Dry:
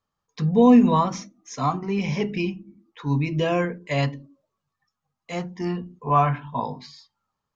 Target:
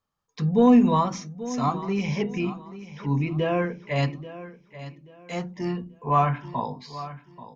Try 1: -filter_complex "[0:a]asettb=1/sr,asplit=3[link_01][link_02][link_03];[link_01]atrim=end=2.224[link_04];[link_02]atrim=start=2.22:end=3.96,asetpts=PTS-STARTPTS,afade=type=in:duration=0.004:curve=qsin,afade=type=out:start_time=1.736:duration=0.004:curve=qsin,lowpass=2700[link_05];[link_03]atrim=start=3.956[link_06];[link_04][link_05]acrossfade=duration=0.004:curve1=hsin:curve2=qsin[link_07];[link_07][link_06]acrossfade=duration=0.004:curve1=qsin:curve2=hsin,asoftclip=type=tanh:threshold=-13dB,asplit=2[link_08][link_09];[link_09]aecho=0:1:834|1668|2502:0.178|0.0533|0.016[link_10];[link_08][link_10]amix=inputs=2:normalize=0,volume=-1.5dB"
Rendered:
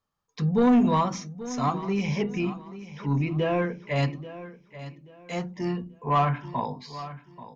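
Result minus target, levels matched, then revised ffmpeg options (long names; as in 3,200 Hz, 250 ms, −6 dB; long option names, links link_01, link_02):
soft clipping: distortion +16 dB
-filter_complex "[0:a]asettb=1/sr,asplit=3[link_01][link_02][link_03];[link_01]atrim=end=2.224[link_04];[link_02]atrim=start=2.22:end=3.96,asetpts=PTS-STARTPTS,afade=type=in:duration=0.004:curve=qsin,afade=type=out:start_time=1.736:duration=0.004:curve=qsin,lowpass=2700[link_05];[link_03]atrim=start=3.956[link_06];[link_04][link_05]acrossfade=duration=0.004:curve1=hsin:curve2=qsin[link_07];[link_07][link_06]acrossfade=duration=0.004:curve1=qsin:curve2=hsin,asoftclip=type=tanh:threshold=-2.5dB,asplit=2[link_08][link_09];[link_09]aecho=0:1:834|1668|2502:0.178|0.0533|0.016[link_10];[link_08][link_10]amix=inputs=2:normalize=0,volume=-1.5dB"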